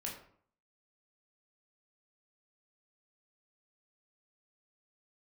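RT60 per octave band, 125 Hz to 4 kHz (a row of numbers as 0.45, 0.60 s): 0.65, 0.65, 0.55, 0.55, 0.45, 0.35 s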